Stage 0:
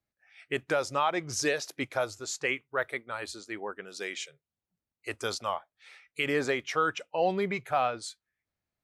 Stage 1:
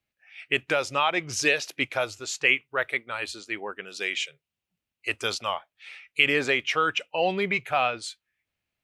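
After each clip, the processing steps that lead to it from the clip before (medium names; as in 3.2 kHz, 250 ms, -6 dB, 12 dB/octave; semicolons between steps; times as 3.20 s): peaking EQ 2.7 kHz +11.5 dB 0.83 oct; trim +1.5 dB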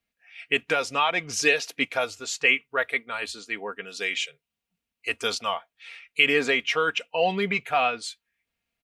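comb 4.3 ms, depth 55%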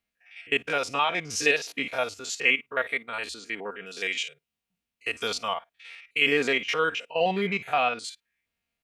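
spectrogram pixelated in time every 50 ms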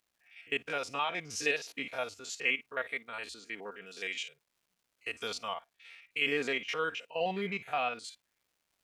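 crackle 420 per s -56 dBFS; trim -8 dB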